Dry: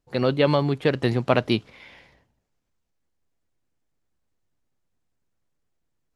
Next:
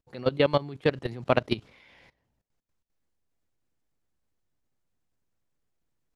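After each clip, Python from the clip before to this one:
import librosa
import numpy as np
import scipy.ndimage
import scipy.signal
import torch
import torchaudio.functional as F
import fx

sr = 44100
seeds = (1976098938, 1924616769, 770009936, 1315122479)

y = fx.level_steps(x, sr, step_db=19)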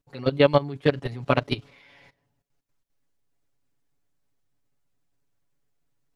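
y = x + 0.92 * np.pad(x, (int(7.1 * sr / 1000.0), 0))[:len(x)]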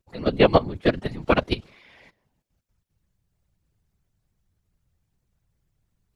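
y = fx.whisperise(x, sr, seeds[0])
y = y * 10.0 ** (1.5 / 20.0)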